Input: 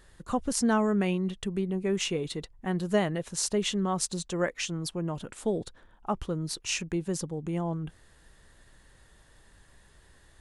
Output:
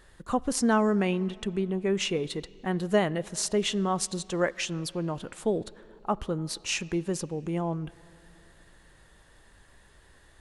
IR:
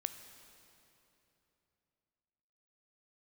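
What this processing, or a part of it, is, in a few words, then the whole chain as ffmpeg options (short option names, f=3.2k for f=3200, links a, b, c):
filtered reverb send: -filter_complex "[0:a]asplit=2[a][b];[b]highpass=200,lowpass=4.5k[c];[1:a]atrim=start_sample=2205[d];[c][d]afir=irnorm=-1:irlink=0,volume=-8dB[e];[a][e]amix=inputs=2:normalize=0,asettb=1/sr,asplit=3[f][g][h];[f]atrim=end=0.954[i];[g]atrim=start=0.95:end=2.28,asetpts=PTS-STARTPTS,afade=t=in:d=0.004:c=qsin,afade=t=out:st=1.326:d=0.004:c=qsin,lowpass=9.3k[j];[h]atrim=start=2.276[k];[i][j]acrossfade=d=0.004:c1=hsin:c2=qsin[l];[l][k]acrossfade=d=0.004:c1=qsin:c2=hsin"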